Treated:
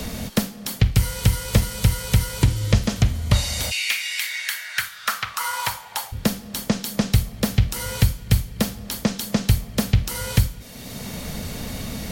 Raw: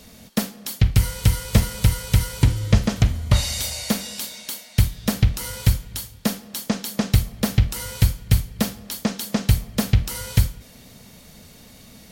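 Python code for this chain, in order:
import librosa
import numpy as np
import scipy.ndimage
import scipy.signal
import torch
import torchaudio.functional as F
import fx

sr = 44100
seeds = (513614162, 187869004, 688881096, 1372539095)

y = fx.highpass_res(x, sr, hz=fx.line((3.7, 2700.0), (6.11, 780.0)), q=5.3, at=(3.7, 6.11), fade=0.02)
y = fx.band_squash(y, sr, depth_pct=70)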